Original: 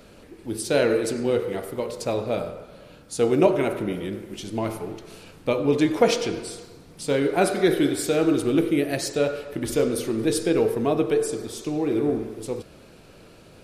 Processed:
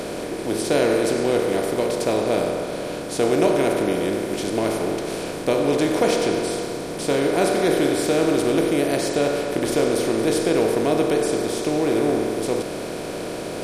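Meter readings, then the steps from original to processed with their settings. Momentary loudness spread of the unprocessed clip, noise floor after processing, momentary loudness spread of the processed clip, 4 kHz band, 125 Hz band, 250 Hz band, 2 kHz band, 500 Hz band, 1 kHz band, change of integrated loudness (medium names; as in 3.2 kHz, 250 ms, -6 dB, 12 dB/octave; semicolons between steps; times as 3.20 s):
13 LU, -30 dBFS, 8 LU, +4.5 dB, +1.0 dB, +2.5 dB, +4.0 dB, +3.5 dB, +5.0 dB, +2.5 dB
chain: spectral levelling over time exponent 0.4; trim -4.5 dB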